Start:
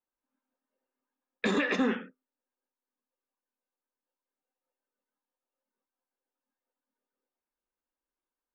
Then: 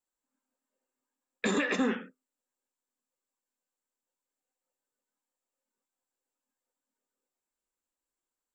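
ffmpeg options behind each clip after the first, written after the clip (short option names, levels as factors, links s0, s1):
-af "equalizer=f=7500:w=4.5:g=14,volume=0.891"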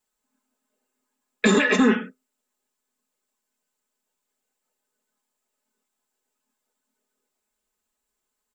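-af "aecho=1:1:4.7:0.82,volume=2.37"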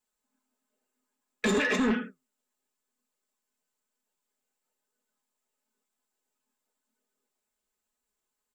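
-af "flanger=delay=4:depth=8.4:regen=74:speed=1:shape=sinusoidal,asoftclip=type=tanh:threshold=0.0944"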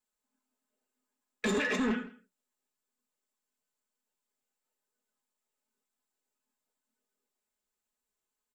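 -af "aecho=1:1:164:0.0891,volume=0.631"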